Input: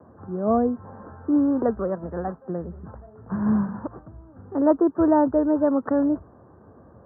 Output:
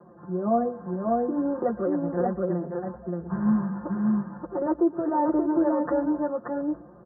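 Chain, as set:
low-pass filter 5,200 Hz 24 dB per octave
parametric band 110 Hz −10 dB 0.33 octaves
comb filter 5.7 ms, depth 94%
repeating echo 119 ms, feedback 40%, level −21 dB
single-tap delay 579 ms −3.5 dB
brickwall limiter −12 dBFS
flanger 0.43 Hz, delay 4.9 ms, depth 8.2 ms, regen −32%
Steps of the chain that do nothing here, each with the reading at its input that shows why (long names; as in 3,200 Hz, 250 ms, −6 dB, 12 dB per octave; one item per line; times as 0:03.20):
low-pass filter 5,200 Hz: nothing at its input above 1,300 Hz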